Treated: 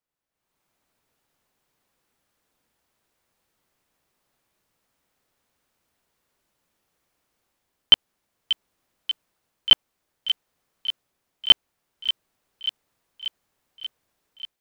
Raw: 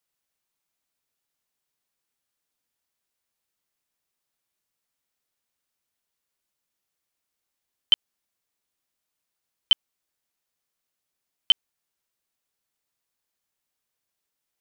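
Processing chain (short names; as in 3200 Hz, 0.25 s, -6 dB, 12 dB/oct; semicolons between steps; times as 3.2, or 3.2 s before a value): high shelf 2100 Hz -12 dB; AGC gain up to 16 dB; thin delay 0.586 s, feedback 69%, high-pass 2400 Hz, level -9 dB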